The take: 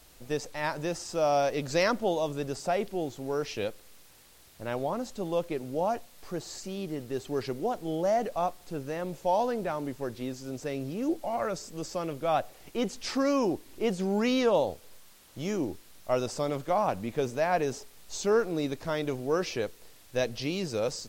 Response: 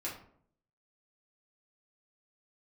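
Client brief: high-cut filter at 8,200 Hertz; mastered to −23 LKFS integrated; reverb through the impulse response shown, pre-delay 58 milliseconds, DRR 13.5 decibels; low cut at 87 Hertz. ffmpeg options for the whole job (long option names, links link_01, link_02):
-filter_complex "[0:a]highpass=87,lowpass=8200,asplit=2[link_01][link_02];[1:a]atrim=start_sample=2205,adelay=58[link_03];[link_02][link_03]afir=irnorm=-1:irlink=0,volume=-15dB[link_04];[link_01][link_04]amix=inputs=2:normalize=0,volume=7.5dB"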